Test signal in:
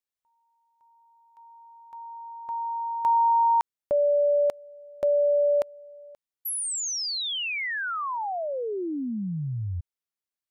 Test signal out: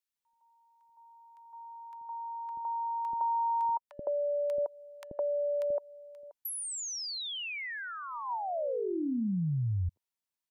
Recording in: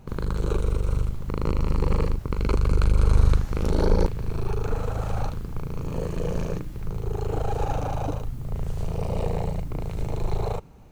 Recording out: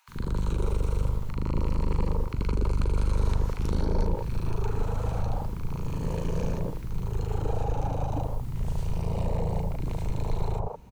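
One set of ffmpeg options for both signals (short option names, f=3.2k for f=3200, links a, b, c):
-filter_complex "[0:a]equalizer=f=950:w=7.1:g=8,acrossover=split=240|680[a][b][c];[a]acompressor=threshold=-21dB:ratio=4[d];[b]acompressor=threshold=-30dB:ratio=4[e];[c]acompressor=threshold=-38dB:ratio=4[f];[d][e][f]amix=inputs=3:normalize=0,acrossover=split=400|1200[g][h][i];[g]adelay=80[j];[h]adelay=160[k];[j][k][i]amix=inputs=3:normalize=0"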